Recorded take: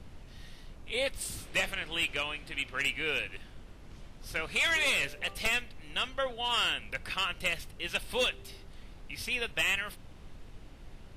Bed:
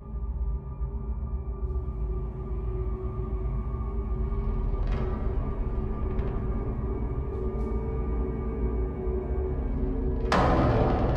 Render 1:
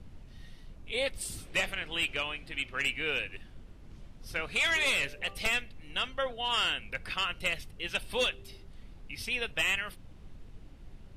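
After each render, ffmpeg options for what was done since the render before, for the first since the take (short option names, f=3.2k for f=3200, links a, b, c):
-af "afftdn=nr=6:nf=-50"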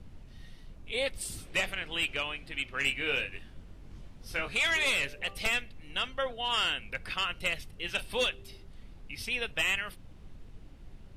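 -filter_complex "[0:a]asettb=1/sr,asplit=3[a][b][c];[a]atrim=end=2.794[d];[b]atrim=start=2.79:end=4.55,asetpts=PTS-STARTPTS,afade=t=in:d=0.004:c=qsin,afade=t=out:st=1.756:d=0.004:c=qsin,asplit=2[e][f];[f]adelay=22,volume=-5dB[g];[e][g]amix=inputs=2:normalize=0,atrim=end_sample=77616[h];[c]atrim=start=4.546[i];[d][h]acrossfade=d=0.004:c1=hsin:c2=qsin[j];[j][i]acrossfade=d=0.004:c1=qsin:c2=hsin,asettb=1/sr,asplit=3[k][l][m];[k]atrim=end=7.694[n];[l]atrim=start=7.69:end=8.11,asetpts=PTS-STARTPTS,afade=t=in:d=0.004:c=qsin,afade=t=out:st=0.416:d=0.004:c=qsin,asplit=2[o][p];[p]adelay=34,volume=-12dB[q];[o][q]amix=inputs=2:normalize=0,atrim=end_sample=18522[r];[m]atrim=start=8.106[s];[n][r]acrossfade=d=0.004:c1=hsin:c2=qsin[t];[t][s]acrossfade=d=0.004:c1=qsin:c2=hsin"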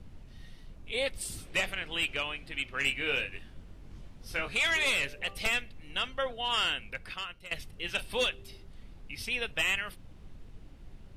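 -filter_complex "[0:a]asplit=2[a][b];[a]atrim=end=7.51,asetpts=PTS-STARTPTS,afade=t=out:st=6.74:d=0.77:silence=0.125893[c];[b]atrim=start=7.51,asetpts=PTS-STARTPTS,afade=t=in:d=0.004:c=hsin:silence=0.125893[d];[c][d]concat=n=2:v=0:a=1"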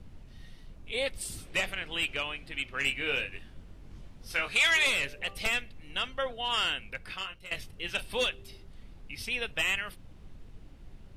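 -filter_complex "[0:a]asettb=1/sr,asplit=3[a][b][c];[a]atrim=end=4.304[d];[b]atrim=start=4.3:end=4.87,asetpts=PTS-STARTPTS,afade=t=in:d=0.004:c=qsin,afade=t=out:st=0.566:d=0.004:c=qsin,tiltshelf=f=660:g=-4.5[e];[c]atrim=start=4.866[f];[d][e]acrossfade=d=0.004:c1=hsin:c2=qsin[g];[g][f]acrossfade=d=0.004:c1=qsin:c2=hsin,asettb=1/sr,asplit=3[h][i][j];[h]atrim=end=7.054[k];[i]atrim=start=7.05:end=7.72,asetpts=PTS-STARTPTS,afade=t=in:d=0.004:c=qsin,afade=t=out:st=0.666:d=0.004:c=qsin,asplit=2[l][m];[m]adelay=21,volume=-6dB[n];[l][n]amix=inputs=2:normalize=0,atrim=end_sample=29547[o];[j]atrim=start=7.716[p];[k][o]acrossfade=d=0.004:c1=hsin:c2=qsin[q];[q][p]acrossfade=d=0.004:c1=qsin:c2=hsin"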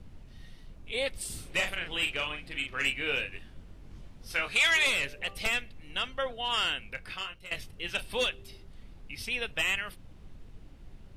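-filter_complex "[0:a]asettb=1/sr,asplit=3[a][b][c];[a]atrim=end=1.264[d];[b]atrim=start=1.26:end=2.88,asetpts=PTS-STARTPTS,afade=t=in:d=0.004:c=qsin,afade=t=out:st=1.616:d=0.004:c=qsin,asplit=2[e][f];[f]adelay=40,volume=-6dB[g];[e][g]amix=inputs=2:normalize=0,atrim=end_sample=71442[h];[c]atrim=start=2.876[i];[d][h]acrossfade=d=0.004:c1=hsin:c2=qsin[j];[j][i]acrossfade=d=0.004:c1=qsin:c2=hsin,asettb=1/sr,asplit=3[k][l][m];[k]atrim=end=6.884[n];[l]atrim=start=6.88:end=7.3,asetpts=PTS-STARTPTS,afade=t=in:d=0.004:c=qsin,afade=t=out:st=0.416:d=0.004:c=qsin,asplit=2[o][p];[p]adelay=29,volume=-14dB[q];[o][q]amix=inputs=2:normalize=0,atrim=end_sample=18522[r];[m]atrim=start=7.296[s];[n][r]acrossfade=d=0.004:c1=hsin:c2=qsin[t];[t][s]acrossfade=d=0.004:c1=qsin:c2=hsin"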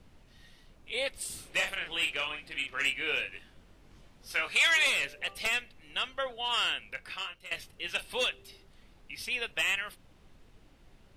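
-af "lowshelf=f=270:g=-11"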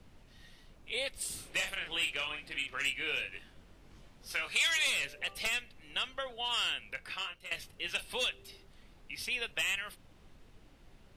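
-filter_complex "[0:a]acrossover=split=180|3000[a][b][c];[b]acompressor=threshold=-37dB:ratio=3[d];[a][d][c]amix=inputs=3:normalize=0"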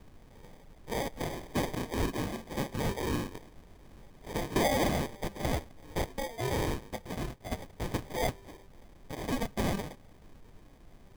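-filter_complex "[0:a]asplit=2[a][b];[b]asoftclip=type=tanh:threshold=-30.5dB,volume=-4.5dB[c];[a][c]amix=inputs=2:normalize=0,acrusher=samples=32:mix=1:aa=0.000001"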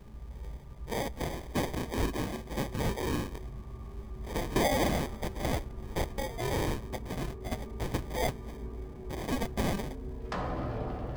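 -filter_complex "[1:a]volume=-12dB[a];[0:a][a]amix=inputs=2:normalize=0"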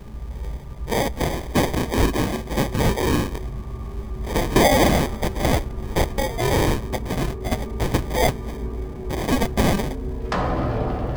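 -af "volume=11.5dB"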